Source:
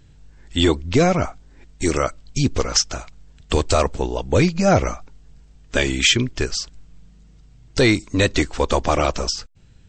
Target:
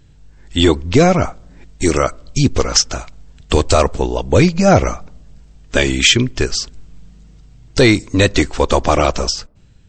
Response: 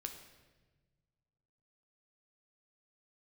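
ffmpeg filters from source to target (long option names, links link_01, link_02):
-filter_complex "[0:a]asplit=2[link_01][link_02];[1:a]atrim=start_sample=2205,asetrate=74970,aresample=44100,lowpass=frequency=2100:width=0.5412,lowpass=frequency=2100:width=1.3066[link_03];[link_02][link_03]afir=irnorm=-1:irlink=0,volume=-13.5dB[link_04];[link_01][link_04]amix=inputs=2:normalize=0,dynaudnorm=framelen=110:gausssize=9:maxgain=4.5dB,volume=1.5dB"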